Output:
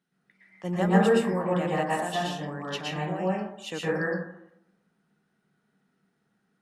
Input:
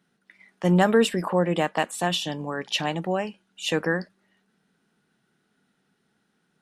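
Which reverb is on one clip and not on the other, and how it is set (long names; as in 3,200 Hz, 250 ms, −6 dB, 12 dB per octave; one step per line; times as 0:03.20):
dense smooth reverb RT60 0.82 s, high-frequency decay 0.25×, pre-delay 105 ms, DRR −7 dB
level −11 dB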